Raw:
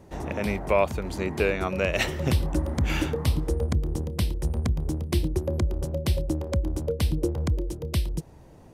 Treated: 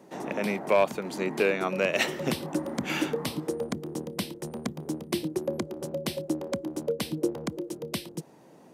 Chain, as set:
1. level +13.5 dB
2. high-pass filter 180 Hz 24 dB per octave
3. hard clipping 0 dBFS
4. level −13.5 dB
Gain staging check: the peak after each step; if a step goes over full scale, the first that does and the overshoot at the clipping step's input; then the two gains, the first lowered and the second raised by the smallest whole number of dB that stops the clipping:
+4.0, +4.0, 0.0, −13.5 dBFS
step 1, 4.0 dB
step 1 +9.5 dB, step 4 −9.5 dB

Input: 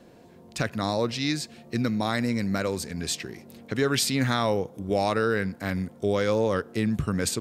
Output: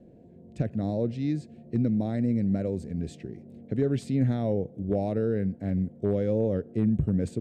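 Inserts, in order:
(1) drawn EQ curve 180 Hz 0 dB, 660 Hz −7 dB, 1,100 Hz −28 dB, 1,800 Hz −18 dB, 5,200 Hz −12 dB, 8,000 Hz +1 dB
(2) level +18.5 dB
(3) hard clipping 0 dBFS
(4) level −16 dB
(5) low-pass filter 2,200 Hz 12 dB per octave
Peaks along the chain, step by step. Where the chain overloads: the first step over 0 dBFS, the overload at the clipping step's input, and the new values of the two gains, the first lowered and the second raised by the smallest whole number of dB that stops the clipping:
−14.0, +4.5, 0.0, −16.0, −16.0 dBFS
step 2, 4.5 dB
step 2 +13.5 dB, step 4 −11 dB

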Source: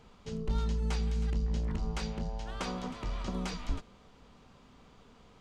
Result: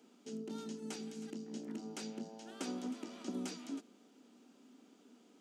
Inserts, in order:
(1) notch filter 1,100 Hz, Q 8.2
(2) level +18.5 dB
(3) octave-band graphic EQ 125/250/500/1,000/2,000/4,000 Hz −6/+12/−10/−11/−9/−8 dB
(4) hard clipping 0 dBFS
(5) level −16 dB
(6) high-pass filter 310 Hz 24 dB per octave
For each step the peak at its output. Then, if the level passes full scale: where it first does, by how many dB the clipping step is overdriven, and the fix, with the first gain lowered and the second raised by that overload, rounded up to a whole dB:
−21.5, −3.0, −2.0, −2.0, −18.0, −26.5 dBFS
no step passes full scale

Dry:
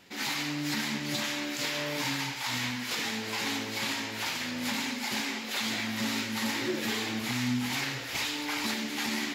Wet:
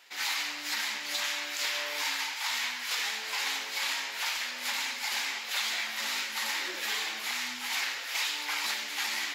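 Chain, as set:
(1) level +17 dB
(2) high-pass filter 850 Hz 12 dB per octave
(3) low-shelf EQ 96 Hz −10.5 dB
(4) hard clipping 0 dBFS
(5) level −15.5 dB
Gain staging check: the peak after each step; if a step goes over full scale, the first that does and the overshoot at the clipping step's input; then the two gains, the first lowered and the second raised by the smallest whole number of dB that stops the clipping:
−2.0, −2.5, −2.5, −2.5, −18.0 dBFS
no step passes full scale

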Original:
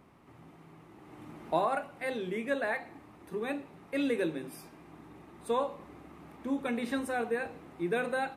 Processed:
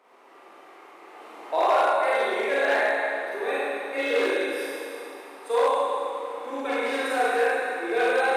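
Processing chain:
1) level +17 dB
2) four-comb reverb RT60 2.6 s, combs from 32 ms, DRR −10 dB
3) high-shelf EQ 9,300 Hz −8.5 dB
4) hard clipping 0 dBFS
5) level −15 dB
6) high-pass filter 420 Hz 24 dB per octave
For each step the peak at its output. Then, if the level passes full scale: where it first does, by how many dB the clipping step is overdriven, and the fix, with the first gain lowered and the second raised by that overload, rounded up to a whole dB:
+1.0, +7.5, +7.5, 0.0, −15.0, −10.0 dBFS
step 1, 7.5 dB
step 1 +9 dB, step 5 −7 dB

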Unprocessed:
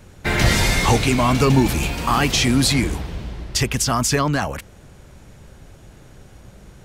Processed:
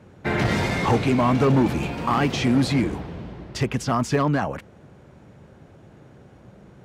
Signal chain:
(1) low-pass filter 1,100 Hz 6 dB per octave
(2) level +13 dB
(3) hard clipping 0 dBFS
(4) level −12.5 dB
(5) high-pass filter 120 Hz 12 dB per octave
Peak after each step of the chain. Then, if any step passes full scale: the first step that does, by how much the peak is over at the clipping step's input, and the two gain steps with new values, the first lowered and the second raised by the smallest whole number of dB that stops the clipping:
−5.0, +8.0, 0.0, −12.5, −7.0 dBFS
step 2, 8.0 dB
step 2 +5 dB, step 4 −4.5 dB

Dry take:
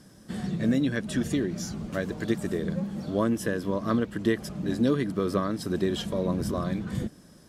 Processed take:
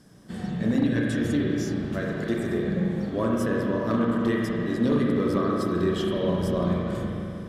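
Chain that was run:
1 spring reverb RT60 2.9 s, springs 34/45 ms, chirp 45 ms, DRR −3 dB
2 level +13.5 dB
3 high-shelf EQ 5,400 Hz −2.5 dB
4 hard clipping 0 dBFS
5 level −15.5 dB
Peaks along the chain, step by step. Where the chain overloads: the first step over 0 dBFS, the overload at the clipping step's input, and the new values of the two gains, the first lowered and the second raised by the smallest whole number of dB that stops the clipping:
−8.5, +5.0, +5.0, 0.0, −15.5 dBFS
step 2, 5.0 dB
step 2 +8.5 dB, step 5 −10.5 dB

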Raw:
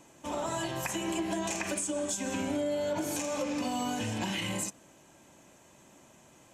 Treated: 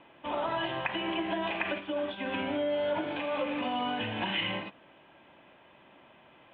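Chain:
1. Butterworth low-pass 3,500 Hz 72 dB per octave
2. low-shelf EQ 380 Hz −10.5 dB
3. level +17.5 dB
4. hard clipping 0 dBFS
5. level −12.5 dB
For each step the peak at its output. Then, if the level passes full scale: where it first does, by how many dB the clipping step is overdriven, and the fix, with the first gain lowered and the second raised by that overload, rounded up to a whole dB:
−22.0, −22.5, −5.0, −5.0, −17.5 dBFS
no step passes full scale

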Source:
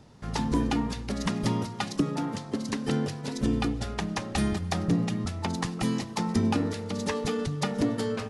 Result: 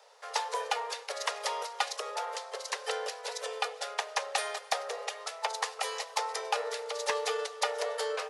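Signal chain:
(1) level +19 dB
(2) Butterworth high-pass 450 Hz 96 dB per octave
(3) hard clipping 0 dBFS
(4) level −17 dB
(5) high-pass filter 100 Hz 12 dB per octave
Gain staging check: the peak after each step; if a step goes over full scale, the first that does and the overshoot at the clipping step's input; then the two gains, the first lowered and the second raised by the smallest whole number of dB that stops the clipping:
+5.5, +4.5, 0.0, −17.0, −16.0 dBFS
step 1, 4.5 dB
step 1 +14 dB, step 4 −12 dB

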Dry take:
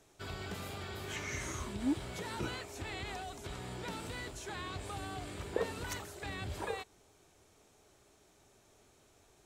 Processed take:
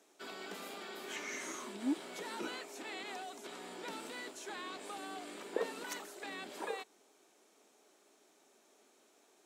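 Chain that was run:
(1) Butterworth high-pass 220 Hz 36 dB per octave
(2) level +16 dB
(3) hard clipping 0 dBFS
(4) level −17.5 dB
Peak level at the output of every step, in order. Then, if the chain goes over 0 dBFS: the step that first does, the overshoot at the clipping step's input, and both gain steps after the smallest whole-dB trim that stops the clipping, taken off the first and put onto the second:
−19.0, −3.0, −3.0, −20.5 dBFS
no step passes full scale

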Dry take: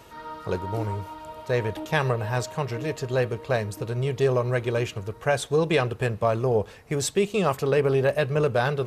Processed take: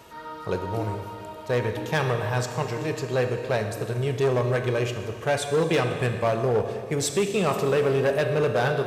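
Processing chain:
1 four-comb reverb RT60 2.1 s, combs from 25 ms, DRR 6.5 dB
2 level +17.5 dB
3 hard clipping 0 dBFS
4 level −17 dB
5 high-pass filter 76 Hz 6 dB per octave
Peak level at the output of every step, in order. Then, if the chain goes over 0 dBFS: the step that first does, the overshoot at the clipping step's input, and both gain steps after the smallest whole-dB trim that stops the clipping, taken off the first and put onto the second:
−9.5, +8.0, 0.0, −17.0, −14.0 dBFS
step 2, 8.0 dB
step 2 +9.5 dB, step 4 −9 dB

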